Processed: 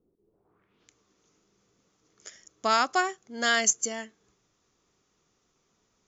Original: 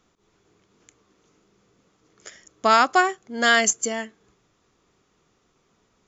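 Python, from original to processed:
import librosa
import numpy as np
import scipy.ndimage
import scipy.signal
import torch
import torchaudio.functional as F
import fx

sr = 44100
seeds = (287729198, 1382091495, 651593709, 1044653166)

y = fx.filter_sweep_lowpass(x, sr, from_hz=400.0, to_hz=6300.0, start_s=0.27, end_s=0.94, q=2.3)
y = F.gain(torch.from_numpy(y), -7.5).numpy()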